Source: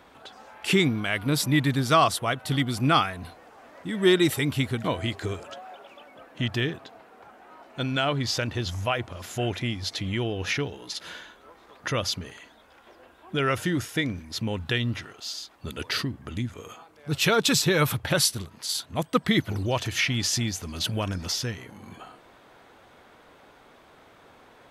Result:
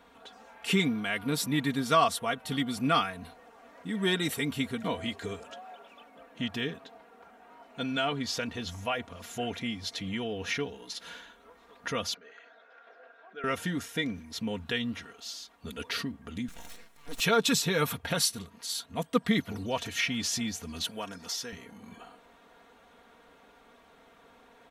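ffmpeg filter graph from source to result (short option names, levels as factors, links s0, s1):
-filter_complex "[0:a]asettb=1/sr,asplit=3[s0][s1][s2];[s0]atrim=end=12.144[s3];[s1]atrim=start=12.14:end=13.44,asetpts=PTS-STARTPTS,afade=t=in:d=0.004:c=qsin,afade=t=out:st=1.296:d=0.004:c=qsin,acompressor=threshold=0.00501:ratio=2:attack=3.2:release=140:knee=1:detection=peak,highpass=460,equalizer=f=460:t=q:w=4:g=5,equalizer=f=670:t=q:w=4:g=6,equalizer=f=950:t=q:w=4:g=-6,equalizer=f=1500:t=q:w=4:g=10,equalizer=f=3100:t=q:w=4:g=-6,equalizer=f=4600:t=q:w=4:g=-4,lowpass=f=4900:w=0.5412,lowpass=f=4900:w=1.3066[s4];[s2]atrim=start=13.436[s5];[s3][s4]acrossfade=d=0.004:c1=hsin:c2=qsin[s6];[s6][s5]acrossfade=d=0.004:c1=qsin:c2=hsin,asettb=1/sr,asplit=3[s7][s8][s9];[s7]atrim=end=16.484[s10];[s8]atrim=start=16.48:end=17.2,asetpts=PTS-STARTPTS,afade=t=in:d=0.004:c=qsin,afade=t=out:st=0.716:d=0.004:c=qsin,highshelf=f=2800:g=10.5,acompressor=threshold=0.02:ratio=2:attack=3.2:release=140:knee=1:detection=peak,aeval=exprs='abs(val(0))':c=same[s11];[s9]atrim=start=17.196[s12];[s10][s11]acrossfade=d=0.004:c1=hsin:c2=qsin[s13];[s13][s12]acrossfade=d=0.004:c1=qsin:c2=hsin,asettb=1/sr,asplit=3[s14][s15][s16];[s14]atrim=end=20.854[s17];[s15]atrim=start=20.85:end=21.53,asetpts=PTS-STARTPTS,afade=t=in:d=0.004:c=qsin,afade=t=out:st=0.676:d=0.004:c=qsin,highpass=f=510:p=1,equalizer=f=2600:w=2:g=-4[s18];[s16]atrim=start=21.526[s19];[s17][s18]acrossfade=d=0.004:c1=hsin:c2=qsin[s20];[s20][s19]acrossfade=d=0.004:c1=qsin:c2=hsin,bandreject=f=4800:w=18,aecho=1:1:4.3:0.67,volume=0.501"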